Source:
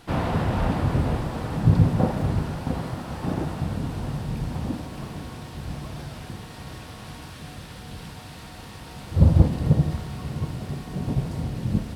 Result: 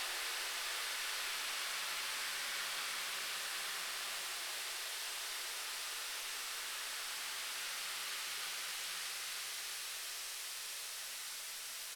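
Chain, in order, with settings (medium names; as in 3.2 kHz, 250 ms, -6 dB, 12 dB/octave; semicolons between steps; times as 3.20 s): spectral gate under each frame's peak -30 dB weak; feedback delay 1073 ms, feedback 38%, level -3 dB; Paulstretch 5.1×, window 1.00 s, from 4.09 s; trim +6.5 dB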